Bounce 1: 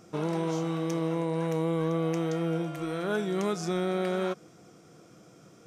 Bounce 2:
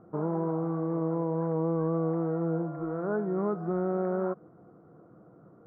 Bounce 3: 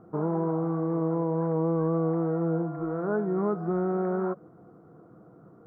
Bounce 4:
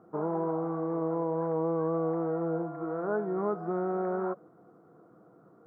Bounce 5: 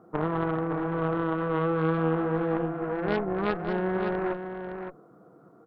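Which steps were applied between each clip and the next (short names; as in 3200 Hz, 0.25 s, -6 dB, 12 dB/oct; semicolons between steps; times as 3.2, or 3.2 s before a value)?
inverse Chebyshev low-pass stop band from 2600 Hz, stop band 40 dB
notch 570 Hz, Q 12; gain +2.5 dB
HPF 310 Hz 6 dB/oct; dynamic EQ 680 Hz, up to +3 dB, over -40 dBFS, Q 1; gain -2 dB
added harmonics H 2 -8 dB, 3 -8 dB, 5 -17 dB, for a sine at -19 dBFS; echo 0.565 s -7.5 dB; gain +8.5 dB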